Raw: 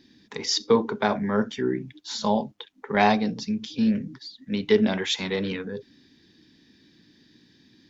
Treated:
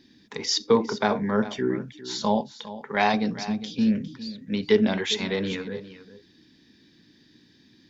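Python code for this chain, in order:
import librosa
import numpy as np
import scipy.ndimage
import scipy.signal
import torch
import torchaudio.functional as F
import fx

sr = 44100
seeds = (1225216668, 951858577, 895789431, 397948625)

y = fx.low_shelf(x, sr, hz=500.0, db=-7.5, at=(2.41, 3.14))
y = y + 10.0 ** (-15.0 / 20.0) * np.pad(y, (int(405 * sr / 1000.0), 0))[:len(y)]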